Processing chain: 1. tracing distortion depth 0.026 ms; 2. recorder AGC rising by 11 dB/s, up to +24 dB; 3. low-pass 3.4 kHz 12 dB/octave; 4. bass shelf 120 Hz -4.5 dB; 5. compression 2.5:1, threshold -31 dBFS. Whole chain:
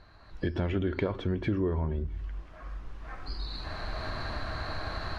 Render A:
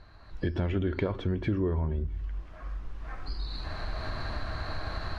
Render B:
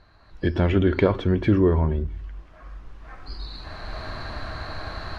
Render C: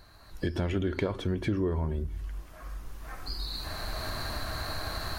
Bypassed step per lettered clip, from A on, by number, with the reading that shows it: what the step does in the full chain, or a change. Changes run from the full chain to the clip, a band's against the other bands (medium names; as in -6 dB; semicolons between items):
4, 125 Hz band +2.5 dB; 5, mean gain reduction 3.5 dB; 3, 4 kHz band +4.5 dB